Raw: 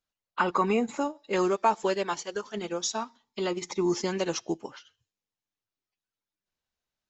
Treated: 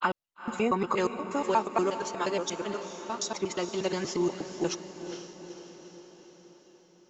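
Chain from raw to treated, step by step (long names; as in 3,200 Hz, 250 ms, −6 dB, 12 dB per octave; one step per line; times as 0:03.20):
slices reordered back to front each 119 ms, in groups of 4
feedback delay with all-pass diffusion 459 ms, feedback 58%, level −10 dB
level −1.5 dB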